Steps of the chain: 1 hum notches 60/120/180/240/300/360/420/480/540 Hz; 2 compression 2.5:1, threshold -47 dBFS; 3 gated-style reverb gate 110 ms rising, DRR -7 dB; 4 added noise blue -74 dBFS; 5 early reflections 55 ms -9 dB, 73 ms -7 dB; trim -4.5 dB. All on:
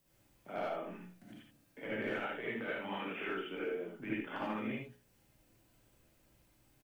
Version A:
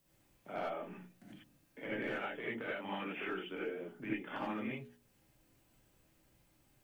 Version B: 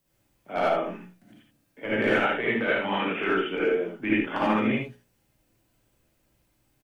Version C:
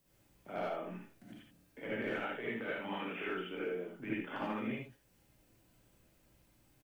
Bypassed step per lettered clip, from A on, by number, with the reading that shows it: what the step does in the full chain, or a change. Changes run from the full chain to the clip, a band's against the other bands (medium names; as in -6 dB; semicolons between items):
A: 5, momentary loudness spread change +2 LU; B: 2, mean gain reduction 12.0 dB; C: 1, momentary loudness spread change +2 LU